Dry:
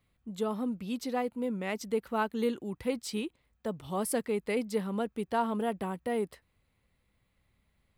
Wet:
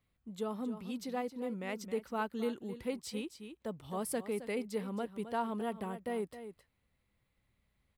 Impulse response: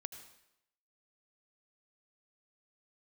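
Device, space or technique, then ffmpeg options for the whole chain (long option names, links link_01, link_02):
ducked delay: -filter_complex "[0:a]asplit=3[link_01][link_02][link_03];[link_02]adelay=266,volume=-6dB[link_04];[link_03]apad=whole_len=363542[link_05];[link_04][link_05]sidechaincompress=threshold=-33dB:ratio=8:attack=16:release=1160[link_06];[link_01][link_06]amix=inputs=2:normalize=0,volume=-5.5dB"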